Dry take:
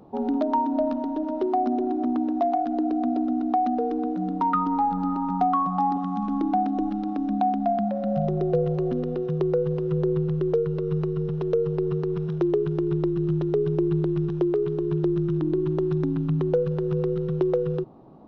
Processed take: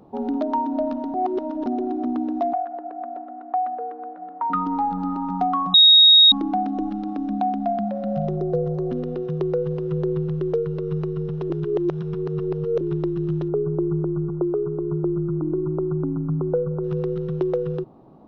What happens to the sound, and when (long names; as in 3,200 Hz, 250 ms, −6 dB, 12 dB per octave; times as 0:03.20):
0:01.14–0:01.66: reverse
0:02.53–0:04.50: Chebyshev band-pass filter 620–1,800 Hz
0:05.74–0:06.32: beep over 3,760 Hz −8 dBFS
0:08.36–0:08.90: parametric band 2,600 Hz −13.5 dB 1 octave
0:11.50–0:12.81: reverse
0:13.48–0:16.84: linear-phase brick-wall low-pass 1,500 Hz